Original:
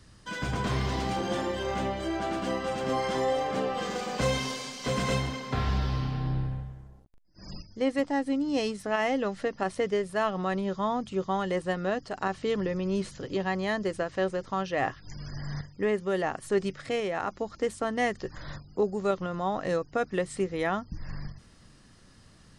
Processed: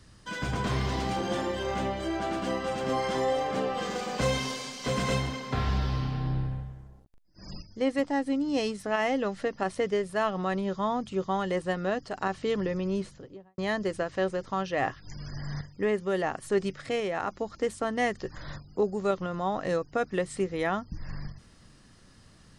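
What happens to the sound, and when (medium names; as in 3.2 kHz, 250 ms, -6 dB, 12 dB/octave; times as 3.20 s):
12.78–13.58 s: studio fade out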